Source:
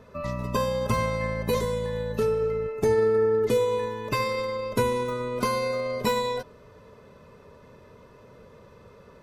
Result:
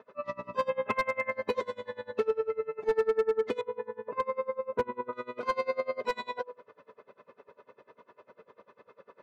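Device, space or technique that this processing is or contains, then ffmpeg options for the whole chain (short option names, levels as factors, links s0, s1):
helicopter radio: -filter_complex "[0:a]bandreject=f=164.9:t=h:w=4,bandreject=f=329.8:t=h:w=4,bandreject=f=494.7:t=h:w=4,bandreject=f=659.6:t=h:w=4,bandreject=f=824.5:t=h:w=4,bandreject=f=989.4:t=h:w=4,asplit=3[s0][s1][s2];[s0]afade=t=out:st=0.68:d=0.02[s3];[s1]highshelf=f=3500:t=q:w=3:g=-12.5,afade=t=in:st=0.68:d=0.02,afade=t=out:st=1.3:d=0.02[s4];[s2]afade=t=in:st=1.3:d=0.02[s5];[s3][s4][s5]amix=inputs=3:normalize=0,asettb=1/sr,asplit=3[s6][s7][s8];[s6]atrim=end=3.614[s9];[s7]atrim=start=3.61:end=5.13,asetpts=PTS-STARTPTS,afade=t=in:d=0.004:c=qsin,afade=t=out:st=1.516:d=0.004:c=qsin,lowpass=1300[s10];[s8]atrim=start=5.126[s11];[s9][s10]acrossfade=d=0.004:c1=hsin:c2=qsin[s12];[s12][s11]acrossfade=d=0.004:c1=qsin:c2=hsin,highpass=390,lowpass=2600,aeval=exprs='val(0)*pow(10,-26*(0.5-0.5*cos(2*PI*10*n/s))/20)':c=same,asoftclip=type=hard:threshold=0.0668,volume=1.5"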